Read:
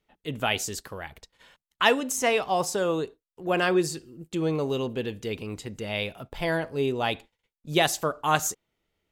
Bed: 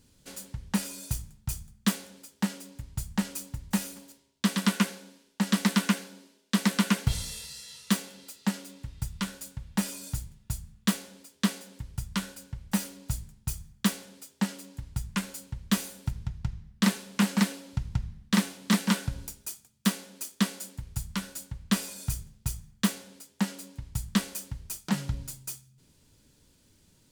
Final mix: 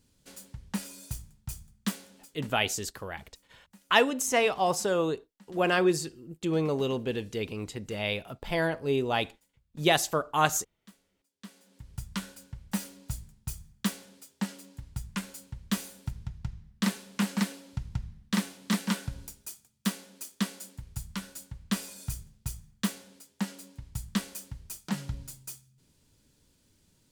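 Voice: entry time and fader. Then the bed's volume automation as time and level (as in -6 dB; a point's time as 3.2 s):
2.10 s, -1.0 dB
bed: 2.31 s -5.5 dB
2.6 s -29 dB
11.22 s -29 dB
11.94 s -4 dB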